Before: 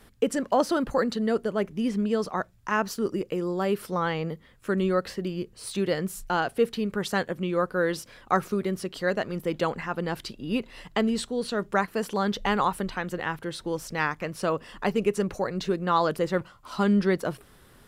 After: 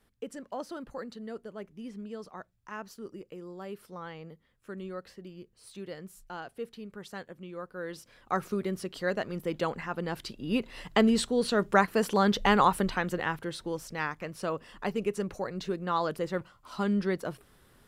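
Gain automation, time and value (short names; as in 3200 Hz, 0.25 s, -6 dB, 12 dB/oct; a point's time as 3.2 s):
7.68 s -15 dB
8.52 s -4 dB
10.12 s -4 dB
11.01 s +2 dB
12.89 s +2 dB
13.95 s -6 dB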